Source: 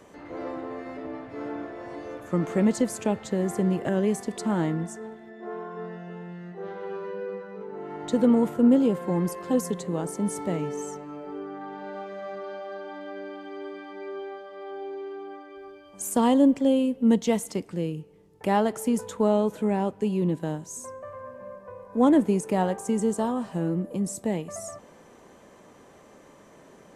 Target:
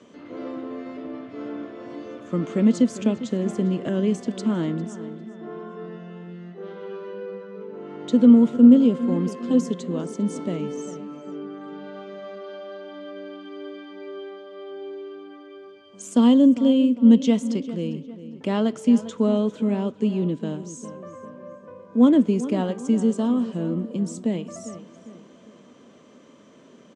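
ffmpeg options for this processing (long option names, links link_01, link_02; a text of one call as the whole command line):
ffmpeg -i in.wav -filter_complex "[0:a]highpass=120,equalizer=frequency=240:width_type=q:width=4:gain=9,equalizer=frequency=820:width_type=q:width=4:gain=-10,equalizer=frequency=1800:width_type=q:width=4:gain=-5,equalizer=frequency=3200:width_type=q:width=4:gain=6,lowpass=frequency=7200:width=0.5412,lowpass=frequency=7200:width=1.3066,asplit=2[link_01][link_02];[link_02]adelay=401,lowpass=frequency=3000:poles=1,volume=-14dB,asplit=2[link_03][link_04];[link_04]adelay=401,lowpass=frequency=3000:poles=1,volume=0.46,asplit=2[link_05][link_06];[link_06]adelay=401,lowpass=frequency=3000:poles=1,volume=0.46,asplit=2[link_07][link_08];[link_08]adelay=401,lowpass=frequency=3000:poles=1,volume=0.46[link_09];[link_01][link_03][link_05][link_07][link_09]amix=inputs=5:normalize=0" out.wav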